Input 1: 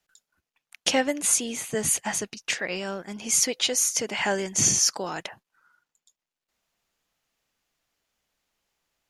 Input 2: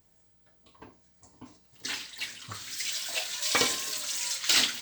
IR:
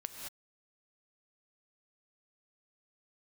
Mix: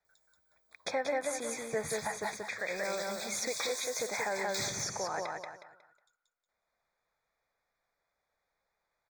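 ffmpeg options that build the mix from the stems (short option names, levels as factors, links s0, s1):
-filter_complex "[0:a]bass=f=250:g=5,treble=f=4000:g=-15,volume=0.708,asplit=2[s0][s1];[s1]volume=0.668[s2];[1:a]adelay=50,volume=0.335,asplit=2[s3][s4];[s4]volume=0.1[s5];[s2][s5]amix=inputs=2:normalize=0,aecho=0:1:182|364|546|728:1|0.31|0.0961|0.0298[s6];[s0][s3][s6]amix=inputs=3:normalize=0,asuperstop=centerf=2900:order=12:qfactor=3.3,lowshelf=f=390:t=q:w=1.5:g=-9.5,alimiter=limit=0.0631:level=0:latency=1:release=210"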